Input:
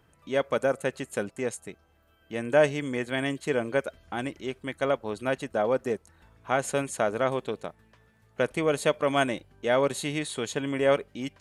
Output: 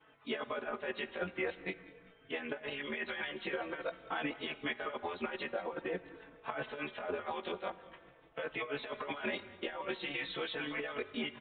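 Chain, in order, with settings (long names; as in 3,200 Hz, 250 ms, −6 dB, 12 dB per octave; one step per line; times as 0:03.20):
every overlapping window played backwards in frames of 42 ms
high-pass filter 680 Hz 6 dB per octave
compressor whose output falls as the input rises −39 dBFS, ratio −1
brickwall limiter −29.5 dBFS, peak gain reduction 9 dB
harmonic and percussive parts rebalanced harmonic −14 dB
echo with shifted repeats 192 ms, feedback 52%, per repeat −98 Hz, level −20 dB
on a send at −16 dB: convolution reverb RT60 2.2 s, pre-delay 24 ms
on the sum: downsampling to 8,000 Hz
barber-pole flanger 4.1 ms −0.47 Hz
level +10.5 dB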